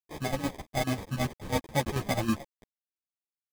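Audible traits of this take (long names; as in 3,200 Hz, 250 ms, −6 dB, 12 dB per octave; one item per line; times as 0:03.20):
a quantiser's noise floor 8 bits, dither none
chopped level 9.2 Hz, depth 65%, duty 55%
aliases and images of a low sample rate 1,400 Hz, jitter 0%
a shimmering, thickened sound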